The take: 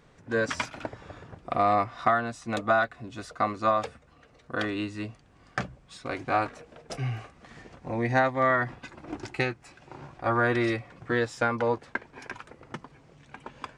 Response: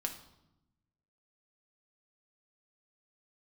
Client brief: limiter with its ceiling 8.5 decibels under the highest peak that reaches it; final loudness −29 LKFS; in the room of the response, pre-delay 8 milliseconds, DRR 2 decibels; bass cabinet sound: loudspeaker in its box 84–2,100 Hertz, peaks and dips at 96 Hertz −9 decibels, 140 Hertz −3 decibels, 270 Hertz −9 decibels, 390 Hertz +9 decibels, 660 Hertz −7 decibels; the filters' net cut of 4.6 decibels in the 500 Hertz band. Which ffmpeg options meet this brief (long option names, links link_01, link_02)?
-filter_complex "[0:a]equalizer=frequency=500:width_type=o:gain=-6,alimiter=limit=-19dB:level=0:latency=1,asplit=2[link_01][link_02];[1:a]atrim=start_sample=2205,adelay=8[link_03];[link_02][link_03]afir=irnorm=-1:irlink=0,volume=-3dB[link_04];[link_01][link_04]amix=inputs=2:normalize=0,highpass=frequency=84:width=0.5412,highpass=frequency=84:width=1.3066,equalizer=frequency=96:width_type=q:width=4:gain=-9,equalizer=frequency=140:width_type=q:width=4:gain=-3,equalizer=frequency=270:width_type=q:width=4:gain=-9,equalizer=frequency=390:width_type=q:width=4:gain=9,equalizer=frequency=660:width_type=q:width=4:gain=-7,lowpass=frequency=2100:width=0.5412,lowpass=frequency=2100:width=1.3066,volume=2.5dB"